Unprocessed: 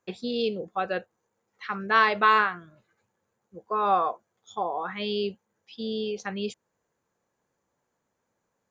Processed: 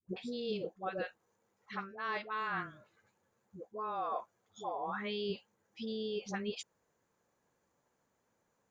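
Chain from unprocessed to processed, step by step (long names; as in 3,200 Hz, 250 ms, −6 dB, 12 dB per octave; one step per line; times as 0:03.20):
reversed playback
downward compressor 8 to 1, threshold −35 dBFS, peak gain reduction 19.5 dB
reversed playback
all-pass dispersion highs, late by 91 ms, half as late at 540 Hz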